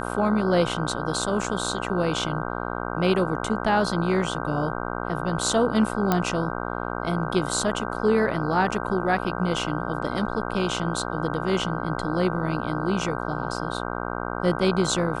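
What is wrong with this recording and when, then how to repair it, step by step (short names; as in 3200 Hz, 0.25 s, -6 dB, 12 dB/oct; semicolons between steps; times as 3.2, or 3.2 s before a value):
buzz 60 Hz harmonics 26 -30 dBFS
6.12 pop -7 dBFS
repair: de-click; de-hum 60 Hz, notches 26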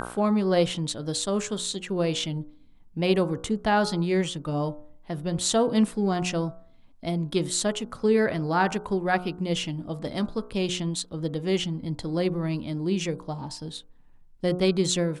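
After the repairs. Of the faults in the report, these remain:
none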